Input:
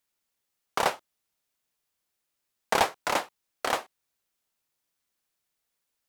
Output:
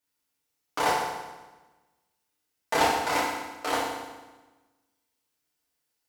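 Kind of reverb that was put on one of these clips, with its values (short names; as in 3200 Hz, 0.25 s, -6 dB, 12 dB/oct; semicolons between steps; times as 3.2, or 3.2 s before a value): FDN reverb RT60 1.2 s, low-frequency decay 1.2×, high-frequency decay 0.9×, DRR -8 dB; gain -7 dB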